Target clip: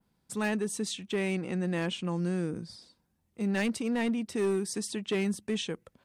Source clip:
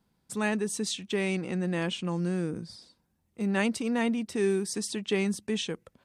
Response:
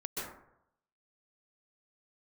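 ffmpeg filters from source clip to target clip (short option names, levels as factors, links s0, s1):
-af "adynamicequalizer=threshold=0.00447:dfrequency=5200:dqfactor=0.91:tfrequency=5200:tqfactor=0.91:attack=5:release=100:ratio=0.375:range=2.5:mode=cutabove:tftype=bell,asoftclip=type=hard:threshold=0.075,volume=0.891"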